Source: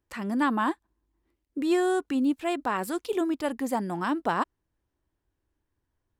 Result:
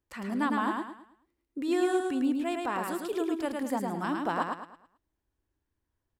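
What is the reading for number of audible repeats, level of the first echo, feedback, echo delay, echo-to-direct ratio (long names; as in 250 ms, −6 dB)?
4, −3.5 dB, 35%, 108 ms, −3.0 dB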